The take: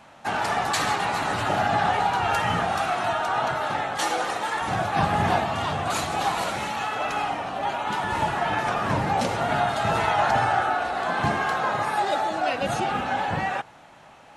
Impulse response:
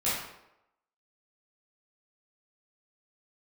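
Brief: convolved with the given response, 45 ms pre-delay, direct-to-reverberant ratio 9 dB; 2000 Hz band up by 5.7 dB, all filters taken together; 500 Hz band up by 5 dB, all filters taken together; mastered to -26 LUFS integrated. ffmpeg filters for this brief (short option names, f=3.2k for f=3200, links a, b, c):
-filter_complex "[0:a]equalizer=f=500:t=o:g=6.5,equalizer=f=2k:t=o:g=7,asplit=2[a][b];[1:a]atrim=start_sample=2205,adelay=45[c];[b][c]afir=irnorm=-1:irlink=0,volume=-18.5dB[d];[a][d]amix=inputs=2:normalize=0,volume=-5.5dB"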